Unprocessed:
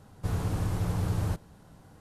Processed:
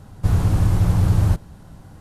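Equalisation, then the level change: low shelf 130 Hz +9 dB; notch 460 Hz, Q 12; +7.0 dB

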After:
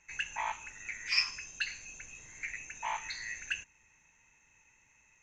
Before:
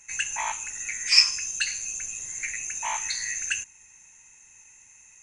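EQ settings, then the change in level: air absorption 210 m; -3.5 dB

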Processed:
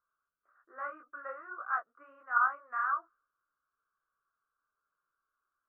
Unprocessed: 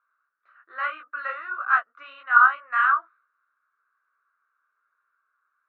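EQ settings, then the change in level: Gaussian blur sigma 5.3 samples; air absorption 170 m; tilt -3.5 dB/oct; -5.0 dB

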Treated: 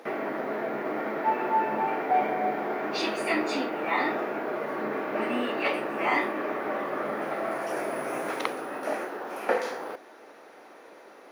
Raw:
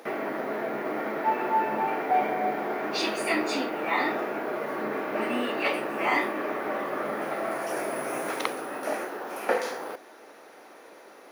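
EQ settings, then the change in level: high shelf 5500 Hz -7.5 dB; 0.0 dB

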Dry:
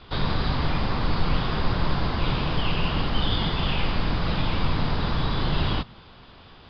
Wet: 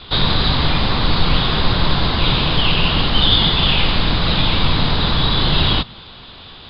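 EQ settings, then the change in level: synth low-pass 3900 Hz, resonance Q 3.5; +7.0 dB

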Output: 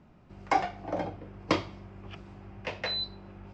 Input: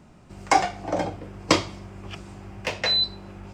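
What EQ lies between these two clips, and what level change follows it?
air absorption 170 m; -6.0 dB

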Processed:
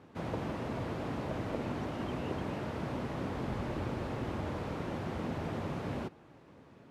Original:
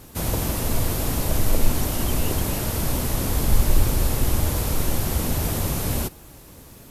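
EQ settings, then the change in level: BPF 140–2100 Hz; -7.5 dB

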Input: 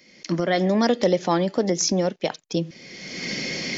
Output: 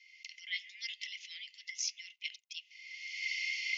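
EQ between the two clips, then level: rippled Chebyshev high-pass 2000 Hz, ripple 9 dB; LPF 5200 Hz 24 dB/oct; high shelf 3200 Hz -10 dB; +4.5 dB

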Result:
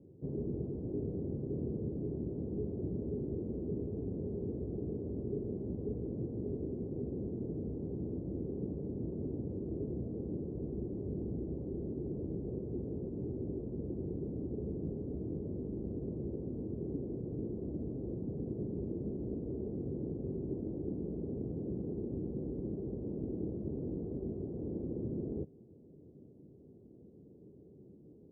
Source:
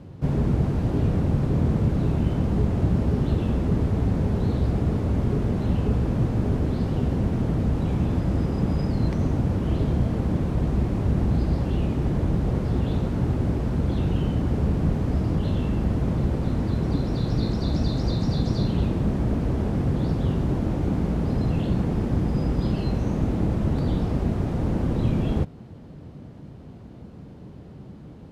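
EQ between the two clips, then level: HPF 51 Hz; ladder low-pass 460 Hz, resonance 55%; low shelf 210 Hz -7 dB; -3.5 dB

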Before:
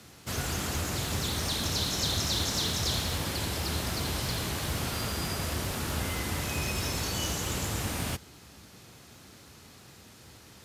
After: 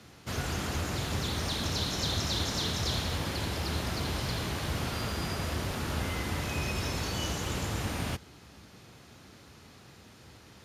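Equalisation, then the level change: high shelf 6700 Hz -10 dB; notch 7900 Hz, Q 17; 0.0 dB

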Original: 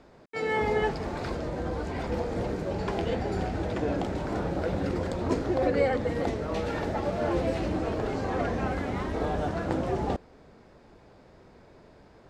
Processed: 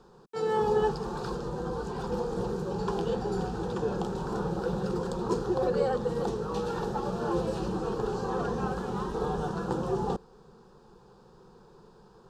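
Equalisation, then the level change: fixed phaser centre 420 Hz, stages 8; +2.0 dB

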